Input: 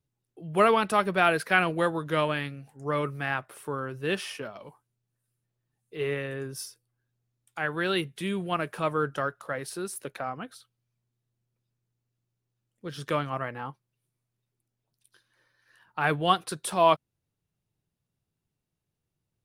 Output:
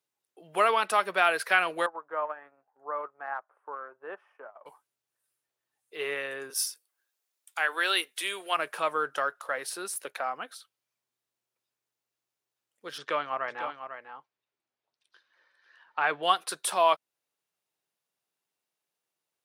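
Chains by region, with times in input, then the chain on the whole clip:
1.86–4.66 EQ curve 830 Hz 0 dB, 1500 Hz -9 dB, 2300 Hz -19 dB, 4200 Hz -30 dB, 9200 Hz -19 dB + transient shaper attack +1 dB, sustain -10 dB + band-pass 1300 Hz, Q 1
6.5–8.57 HPF 260 Hz 24 dB/oct + tilt +2 dB/oct
12.98–16.23 air absorption 140 m + echo 0.498 s -9.5 dB
whole clip: compressor 1.5:1, threshold -27 dBFS; HPF 610 Hz 12 dB/oct; gain +3.5 dB

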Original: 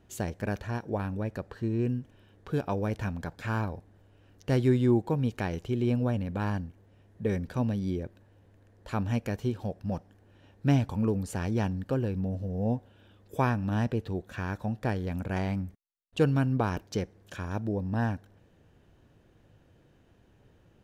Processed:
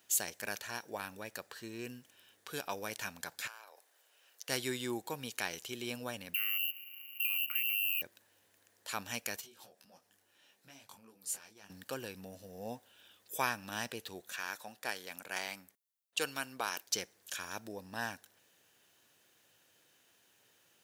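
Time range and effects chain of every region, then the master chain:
3.47–4.49 HPF 440 Hz 24 dB/oct + compressor 16:1, threshold -43 dBFS
6.34–8.02 inverted band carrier 2900 Hz + compressor 12:1, threshold -38 dBFS + careless resampling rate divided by 3×, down filtered, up hold
9.41–11.7 HPF 95 Hz + compressor 5:1, threshold -40 dBFS + detuned doubles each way 23 cents
14.36–16.87 HPF 390 Hz 6 dB/oct + mismatched tape noise reduction decoder only
whole clip: HPF 74 Hz; differentiator; gain +12.5 dB

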